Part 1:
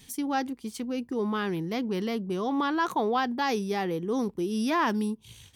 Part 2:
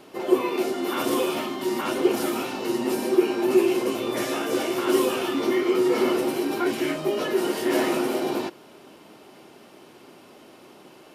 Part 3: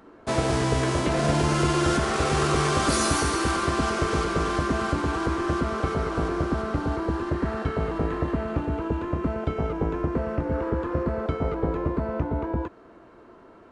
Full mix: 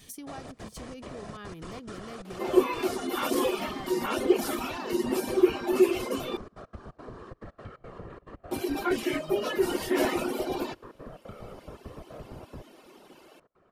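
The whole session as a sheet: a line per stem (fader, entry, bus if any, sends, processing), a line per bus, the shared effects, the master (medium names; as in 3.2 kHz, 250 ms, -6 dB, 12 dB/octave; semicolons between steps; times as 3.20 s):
-0.5 dB, 0.00 s, bus A, no send, compression 2:1, threshold -40 dBFS, peak gain reduction 10 dB
-1.0 dB, 2.25 s, muted 6.37–8.51 s, no bus, no send, high-pass 160 Hz 24 dB/octave; reverb removal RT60 1.7 s
-14.0 dB, 0.00 s, bus A, no send, trance gate "x.xxxx.x.x" 176 bpm -24 dB; whisper effect
bus A: 0.0 dB, comb 1.7 ms, depth 30%; compression 2.5:1, threshold -40 dBFS, peak gain reduction 8 dB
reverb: none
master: none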